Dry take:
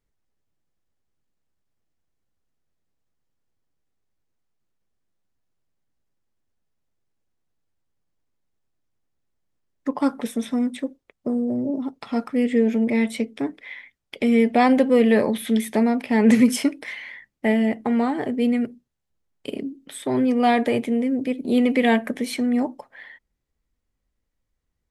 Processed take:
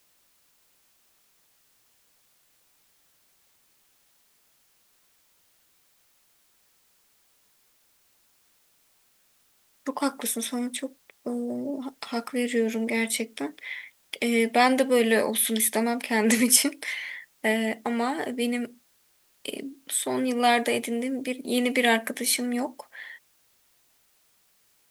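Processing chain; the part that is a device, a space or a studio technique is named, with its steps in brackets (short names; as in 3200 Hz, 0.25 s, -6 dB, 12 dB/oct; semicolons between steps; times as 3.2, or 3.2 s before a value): turntable without a phono preamp (RIAA curve recording; white noise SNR 36 dB); gain -1 dB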